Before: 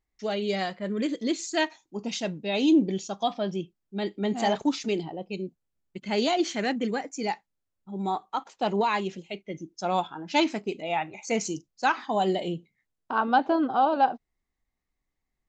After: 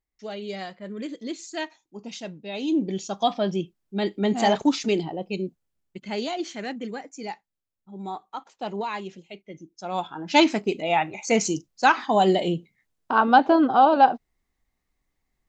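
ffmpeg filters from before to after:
ffmpeg -i in.wav -af "volume=15.5dB,afade=type=in:start_time=2.67:duration=0.59:silence=0.316228,afade=type=out:start_time=5.44:duration=0.83:silence=0.334965,afade=type=in:start_time=9.89:duration=0.48:silence=0.281838" out.wav

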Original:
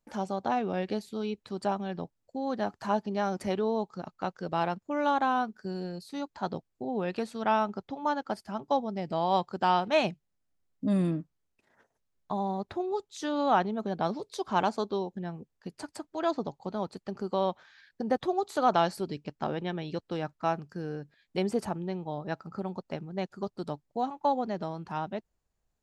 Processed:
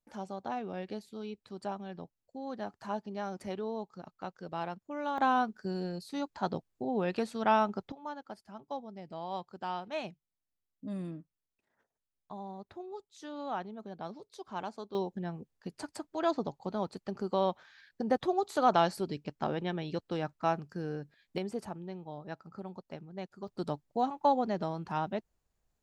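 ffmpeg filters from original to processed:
ffmpeg -i in.wav -af "asetnsamples=nb_out_samples=441:pad=0,asendcmd='5.18 volume volume 0dB;7.92 volume volume -12dB;14.95 volume volume -1dB;21.38 volume volume -8dB;23.48 volume volume 0.5dB',volume=-8dB" out.wav

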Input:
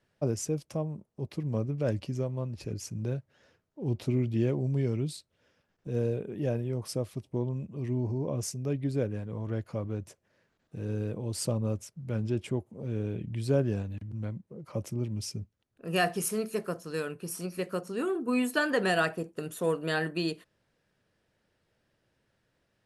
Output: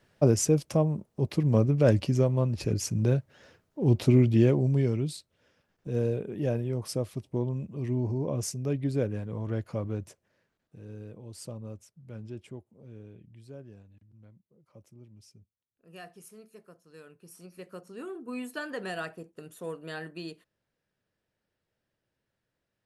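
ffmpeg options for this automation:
ffmpeg -i in.wav -af "volume=18.5dB,afade=type=out:start_time=4.15:duration=0.85:silence=0.473151,afade=type=out:start_time=9.94:duration=0.87:silence=0.251189,afade=type=out:start_time=12.33:duration=1.18:silence=0.354813,afade=type=in:start_time=16.83:duration=1.22:silence=0.298538" out.wav

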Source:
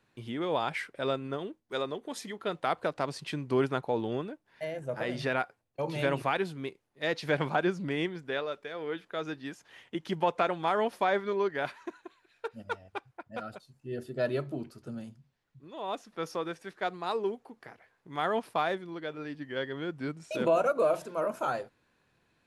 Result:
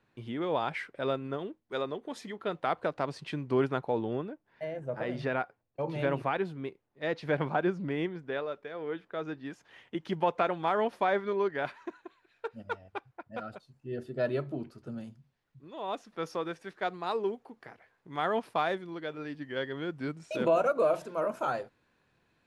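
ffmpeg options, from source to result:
ffmpeg -i in.wav -af "asetnsamples=nb_out_samples=441:pad=0,asendcmd='3.99 lowpass f 1600;9.5 lowpass f 3200;14.98 lowpass f 5500;18.56 lowpass f 9300;20.21 lowpass f 5700',lowpass=frequency=2900:poles=1" out.wav

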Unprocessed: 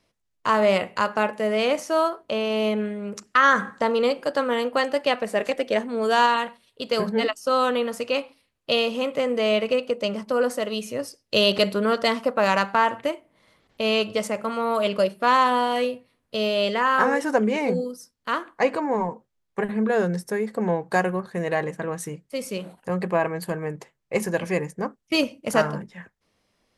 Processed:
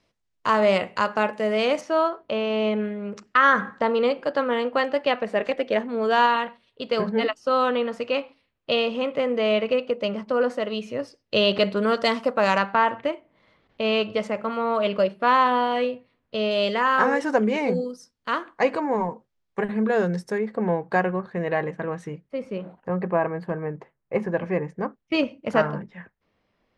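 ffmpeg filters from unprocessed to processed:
ffmpeg -i in.wav -af "asetnsamples=nb_out_samples=441:pad=0,asendcmd='1.81 lowpass f 3500;11.77 lowpass f 7100;12.58 lowpass f 3400;16.51 lowpass f 6000;20.38 lowpass f 2900;22.29 lowpass f 1700;24.68 lowpass f 2800',lowpass=6800" out.wav

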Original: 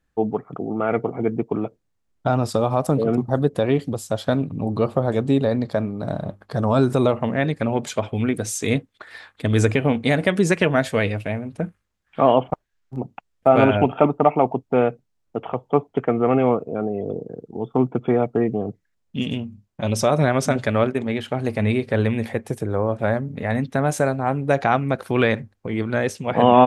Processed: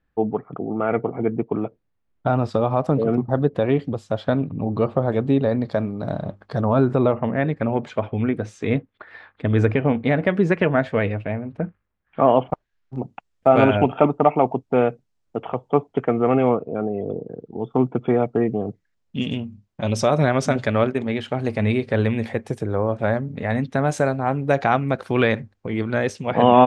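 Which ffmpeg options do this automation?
ffmpeg -i in.wav -af "asetnsamples=nb_out_samples=441:pad=0,asendcmd='5.64 lowpass f 5200;6.61 lowpass f 2100;12.36 lowpass f 4800;12.97 lowpass f 8900;16.49 lowpass f 4100;17.6 lowpass f 6700',lowpass=3000" out.wav

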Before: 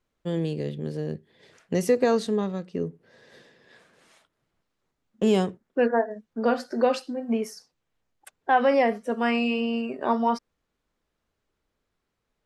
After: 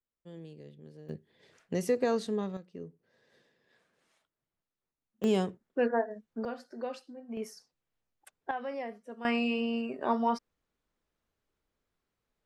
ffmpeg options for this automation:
ffmpeg -i in.wav -af "asetnsamples=nb_out_samples=441:pad=0,asendcmd='1.09 volume volume -7dB;2.57 volume volume -14.5dB;5.24 volume volume -6dB;6.45 volume volume -15.5dB;7.37 volume volume -8dB;8.51 volume volume -17dB;9.25 volume volume -5dB',volume=-19.5dB" out.wav

